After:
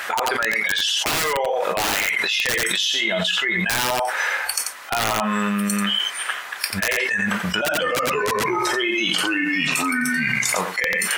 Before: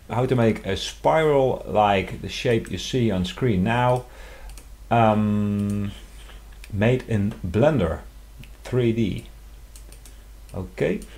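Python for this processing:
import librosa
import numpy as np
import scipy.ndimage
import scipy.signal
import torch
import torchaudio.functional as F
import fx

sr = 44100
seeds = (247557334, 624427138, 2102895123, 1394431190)

y = fx.noise_reduce_blind(x, sr, reduce_db=18)
y = scipy.signal.sosfilt(scipy.signal.butter(2, 680.0, 'highpass', fs=sr, output='sos'), y)
y = fx.peak_eq(y, sr, hz=1600.0, db=14.5, octaves=1.6)
y = fx.rider(y, sr, range_db=5, speed_s=2.0)
y = (np.mod(10.0 ** (10.5 / 20.0) * y + 1.0, 2.0) - 1.0) / 10.0 ** (10.5 / 20.0)
y = y + 10.0 ** (-10.5 / 20.0) * np.pad(y, (int(89 * sr / 1000.0), 0))[:len(y)]
y = fx.echo_pitch(y, sr, ms=241, semitones=-3, count=2, db_per_echo=-3.0, at=(7.34, 10.61))
y = fx.env_flatten(y, sr, amount_pct=100)
y = y * librosa.db_to_amplitude(-6.5)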